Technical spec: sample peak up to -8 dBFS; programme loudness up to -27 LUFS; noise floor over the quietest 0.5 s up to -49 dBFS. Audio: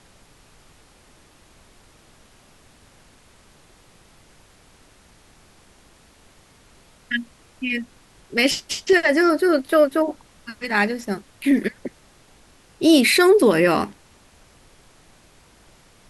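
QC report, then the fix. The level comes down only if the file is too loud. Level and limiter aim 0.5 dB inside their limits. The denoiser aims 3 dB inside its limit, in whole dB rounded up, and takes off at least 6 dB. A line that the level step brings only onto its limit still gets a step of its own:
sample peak -4.0 dBFS: fail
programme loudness -19.5 LUFS: fail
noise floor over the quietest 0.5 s -53 dBFS: pass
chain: trim -8 dB

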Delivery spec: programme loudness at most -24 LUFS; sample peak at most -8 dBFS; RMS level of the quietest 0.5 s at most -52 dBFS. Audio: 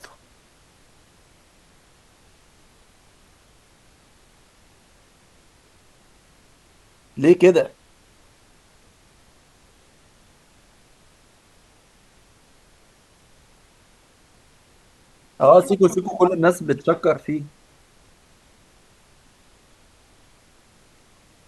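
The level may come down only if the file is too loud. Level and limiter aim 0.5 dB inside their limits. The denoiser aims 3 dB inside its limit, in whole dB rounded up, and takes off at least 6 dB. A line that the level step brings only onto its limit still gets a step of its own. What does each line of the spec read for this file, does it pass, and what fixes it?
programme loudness -18.0 LUFS: fail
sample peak -2.0 dBFS: fail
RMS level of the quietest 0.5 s -55 dBFS: pass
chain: trim -6.5 dB

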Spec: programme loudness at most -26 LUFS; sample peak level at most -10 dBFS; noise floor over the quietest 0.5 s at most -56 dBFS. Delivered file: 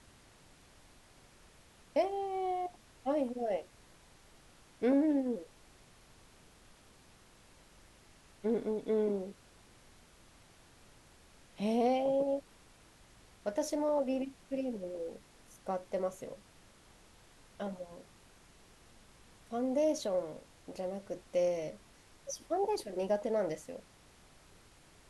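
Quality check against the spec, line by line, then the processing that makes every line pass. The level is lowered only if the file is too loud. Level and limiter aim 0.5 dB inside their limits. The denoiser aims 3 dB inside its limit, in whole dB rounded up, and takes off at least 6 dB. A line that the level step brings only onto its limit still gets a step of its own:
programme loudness -35.0 LUFS: pass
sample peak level -19.0 dBFS: pass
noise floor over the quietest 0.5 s -61 dBFS: pass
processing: none needed

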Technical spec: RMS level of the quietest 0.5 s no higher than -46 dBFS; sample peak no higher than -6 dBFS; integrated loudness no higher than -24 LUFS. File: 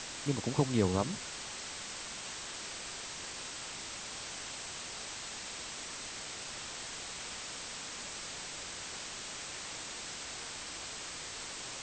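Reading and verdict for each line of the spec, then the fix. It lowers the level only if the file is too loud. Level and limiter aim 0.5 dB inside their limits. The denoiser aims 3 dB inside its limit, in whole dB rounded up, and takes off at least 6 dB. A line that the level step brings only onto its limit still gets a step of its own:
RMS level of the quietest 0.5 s -43 dBFS: fail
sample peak -13.5 dBFS: pass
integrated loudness -38.5 LUFS: pass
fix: noise reduction 6 dB, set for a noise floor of -43 dBFS

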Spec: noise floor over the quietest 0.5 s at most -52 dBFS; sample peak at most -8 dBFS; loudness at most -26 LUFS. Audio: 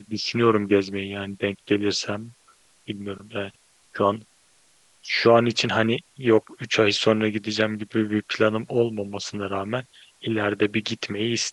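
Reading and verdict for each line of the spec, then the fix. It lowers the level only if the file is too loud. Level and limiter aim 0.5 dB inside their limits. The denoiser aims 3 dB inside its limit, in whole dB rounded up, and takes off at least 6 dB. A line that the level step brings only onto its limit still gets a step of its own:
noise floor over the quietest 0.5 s -59 dBFS: pass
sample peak -4.0 dBFS: fail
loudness -23.5 LUFS: fail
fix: trim -3 dB; peak limiter -8.5 dBFS

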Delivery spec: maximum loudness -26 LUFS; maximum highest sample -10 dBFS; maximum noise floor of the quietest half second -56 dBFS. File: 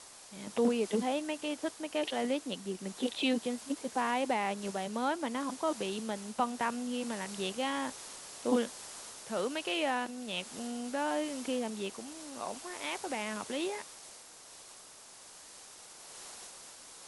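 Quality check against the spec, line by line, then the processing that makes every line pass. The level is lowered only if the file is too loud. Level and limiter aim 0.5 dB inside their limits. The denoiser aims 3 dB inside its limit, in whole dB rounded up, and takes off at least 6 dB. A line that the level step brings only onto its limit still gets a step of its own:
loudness -35.0 LUFS: pass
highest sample -17.0 dBFS: pass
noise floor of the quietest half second -53 dBFS: fail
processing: noise reduction 6 dB, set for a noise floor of -53 dBFS

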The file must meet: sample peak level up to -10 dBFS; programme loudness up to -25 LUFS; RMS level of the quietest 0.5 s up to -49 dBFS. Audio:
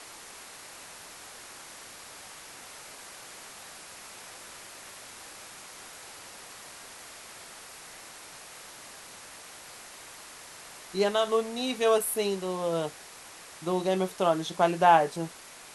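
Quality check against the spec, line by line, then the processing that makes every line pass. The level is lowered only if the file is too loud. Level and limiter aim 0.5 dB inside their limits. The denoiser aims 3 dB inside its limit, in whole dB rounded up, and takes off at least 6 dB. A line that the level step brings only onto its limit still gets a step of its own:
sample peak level -8.5 dBFS: fail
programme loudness -27.0 LUFS: pass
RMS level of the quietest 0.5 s -48 dBFS: fail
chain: noise reduction 6 dB, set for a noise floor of -48 dBFS; peak limiter -10.5 dBFS

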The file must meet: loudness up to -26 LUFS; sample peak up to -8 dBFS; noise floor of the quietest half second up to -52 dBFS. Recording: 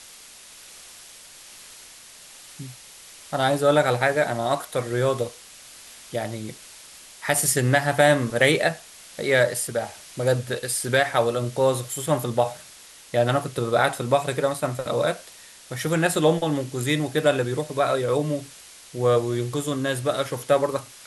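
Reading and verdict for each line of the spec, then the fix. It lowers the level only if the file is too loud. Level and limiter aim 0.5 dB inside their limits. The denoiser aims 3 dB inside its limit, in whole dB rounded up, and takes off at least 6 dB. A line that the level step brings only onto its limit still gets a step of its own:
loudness -23.0 LUFS: fail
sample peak -5.0 dBFS: fail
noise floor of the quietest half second -47 dBFS: fail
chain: noise reduction 6 dB, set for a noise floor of -47 dBFS; trim -3.5 dB

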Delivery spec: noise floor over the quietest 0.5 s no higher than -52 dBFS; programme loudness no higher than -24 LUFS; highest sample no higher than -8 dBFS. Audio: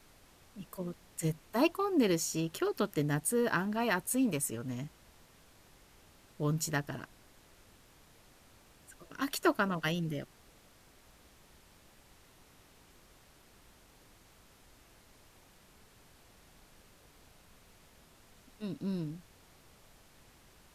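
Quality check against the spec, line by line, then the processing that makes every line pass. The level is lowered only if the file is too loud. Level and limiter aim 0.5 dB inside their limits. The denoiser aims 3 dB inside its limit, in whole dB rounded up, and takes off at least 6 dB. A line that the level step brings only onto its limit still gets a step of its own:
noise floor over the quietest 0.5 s -61 dBFS: pass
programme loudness -33.5 LUFS: pass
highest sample -15.0 dBFS: pass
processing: none needed

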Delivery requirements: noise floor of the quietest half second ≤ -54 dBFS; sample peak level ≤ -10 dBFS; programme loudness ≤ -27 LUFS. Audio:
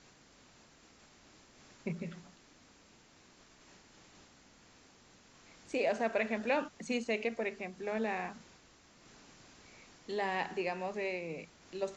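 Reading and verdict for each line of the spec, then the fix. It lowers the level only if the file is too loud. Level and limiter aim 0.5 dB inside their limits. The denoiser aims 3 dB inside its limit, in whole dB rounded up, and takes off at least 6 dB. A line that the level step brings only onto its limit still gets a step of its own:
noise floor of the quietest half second -62 dBFS: pass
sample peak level -19.0 dBFS: pass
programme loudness -36.5 LUFS: pass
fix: none needed

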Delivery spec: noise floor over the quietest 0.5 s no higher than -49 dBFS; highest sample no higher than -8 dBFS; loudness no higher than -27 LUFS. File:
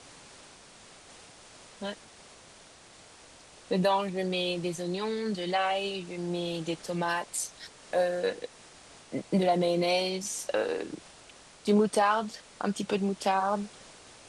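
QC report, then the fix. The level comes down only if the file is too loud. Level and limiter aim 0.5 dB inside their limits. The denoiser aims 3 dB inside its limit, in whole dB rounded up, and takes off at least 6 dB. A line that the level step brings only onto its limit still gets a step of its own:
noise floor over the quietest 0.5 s -53 dBFS: pass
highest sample -13.5 dBFS: pass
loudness -30.0 LUFS: pass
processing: none needed

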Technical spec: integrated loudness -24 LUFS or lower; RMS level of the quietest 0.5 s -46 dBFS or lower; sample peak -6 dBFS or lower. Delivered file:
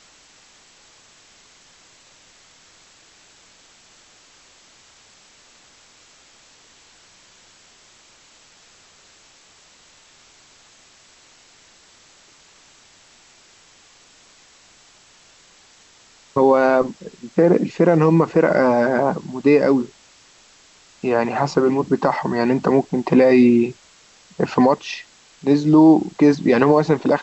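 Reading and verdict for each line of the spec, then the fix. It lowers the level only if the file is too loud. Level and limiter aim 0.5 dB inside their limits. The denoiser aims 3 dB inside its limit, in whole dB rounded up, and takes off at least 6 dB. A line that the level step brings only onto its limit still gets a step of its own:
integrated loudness -17.0 LUFS: fail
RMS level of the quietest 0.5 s -51 dBFS: pass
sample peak -4.5 dBFS: fail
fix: trim -7.5 dB

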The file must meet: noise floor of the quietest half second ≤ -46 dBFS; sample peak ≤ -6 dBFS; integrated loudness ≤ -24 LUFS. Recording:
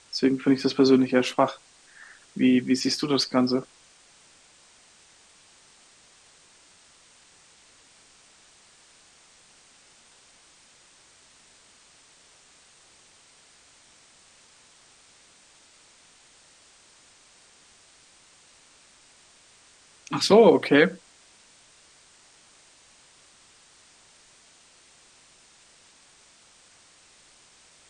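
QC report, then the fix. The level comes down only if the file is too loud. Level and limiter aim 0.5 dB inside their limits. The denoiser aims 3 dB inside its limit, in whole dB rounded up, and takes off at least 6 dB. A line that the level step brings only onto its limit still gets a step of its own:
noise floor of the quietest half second -56 dBFS: pass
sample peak -5.0 dBFS: fail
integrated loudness -21.5 LUFS: fail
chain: trim -3 dB

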